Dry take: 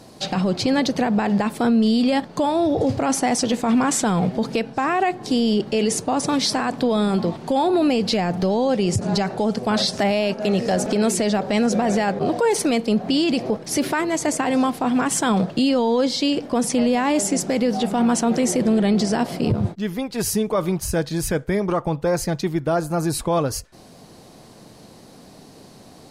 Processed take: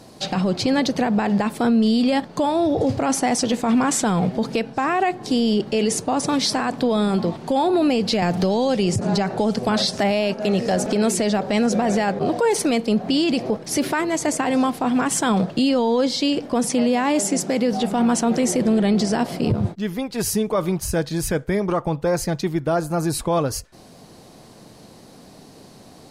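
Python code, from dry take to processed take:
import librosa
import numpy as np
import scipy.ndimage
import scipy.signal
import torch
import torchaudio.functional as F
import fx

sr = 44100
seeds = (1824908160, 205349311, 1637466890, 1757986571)

y = fx.band_squash(x, sr, depth_pct=70, at=(8.22, 9.69))
y = fx.highpass(y, sr, hz=110.0, slope=12, at=(16.7, 17.73))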